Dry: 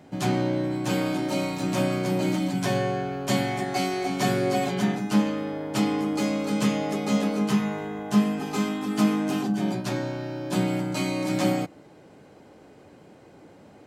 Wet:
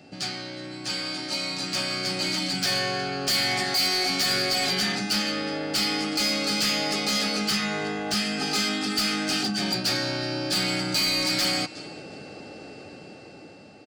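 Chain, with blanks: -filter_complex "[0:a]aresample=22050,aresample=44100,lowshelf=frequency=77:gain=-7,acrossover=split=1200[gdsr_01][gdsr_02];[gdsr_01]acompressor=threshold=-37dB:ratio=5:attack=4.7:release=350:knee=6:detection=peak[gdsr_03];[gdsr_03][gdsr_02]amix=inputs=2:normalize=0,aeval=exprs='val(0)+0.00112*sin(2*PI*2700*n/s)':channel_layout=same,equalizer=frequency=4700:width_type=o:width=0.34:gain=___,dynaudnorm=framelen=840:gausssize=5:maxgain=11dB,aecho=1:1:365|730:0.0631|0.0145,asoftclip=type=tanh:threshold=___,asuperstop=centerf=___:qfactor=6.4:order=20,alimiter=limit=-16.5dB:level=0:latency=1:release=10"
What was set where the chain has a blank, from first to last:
15, -19dB, 1000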